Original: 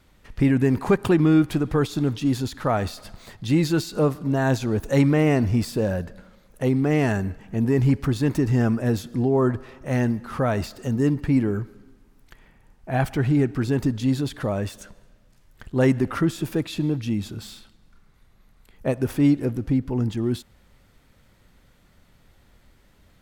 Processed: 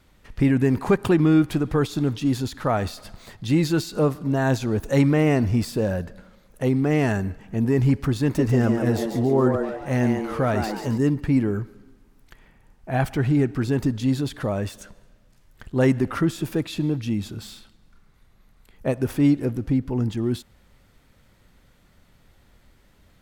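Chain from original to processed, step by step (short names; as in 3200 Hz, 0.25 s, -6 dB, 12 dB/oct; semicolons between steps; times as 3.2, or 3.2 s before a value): 8.24–10.98 frequency-shifting echo 0.141 s, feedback 42%, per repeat +110 Hz, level -6 dB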